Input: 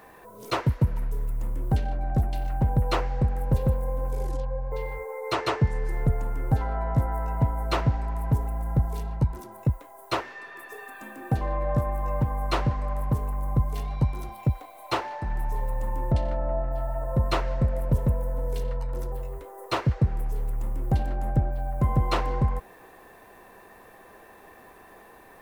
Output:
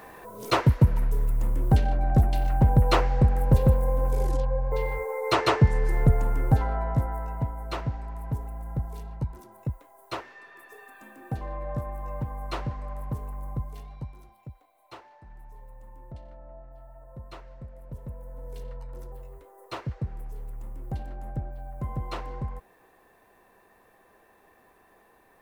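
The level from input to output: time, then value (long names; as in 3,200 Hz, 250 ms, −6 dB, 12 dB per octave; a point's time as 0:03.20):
0:06.37 +4 dB
0:07.57 −7 dB
0:13.45 −7 dB
0:14.48 −19 dB
0:17.75 −19 dB
0:18.62 −9.5 dB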